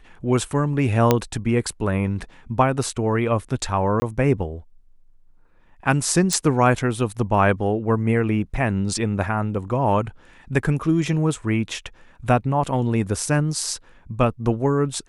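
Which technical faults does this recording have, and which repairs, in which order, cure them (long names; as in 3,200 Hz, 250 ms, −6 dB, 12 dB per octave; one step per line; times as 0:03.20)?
0:01.11: click −2 dBFS
0:04.00–0:04.02: drop-out 20 ms
0:06.33: click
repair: click removal
repair the gap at 0:04.00, 20 ms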